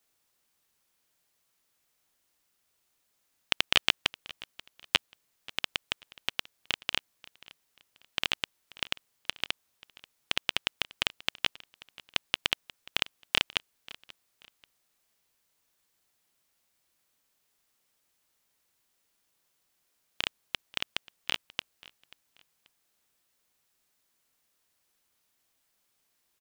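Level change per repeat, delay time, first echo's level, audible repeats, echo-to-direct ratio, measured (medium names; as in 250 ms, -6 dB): -10.5 dB, 535 ms, -21.0 dB, 2, -20.5 dB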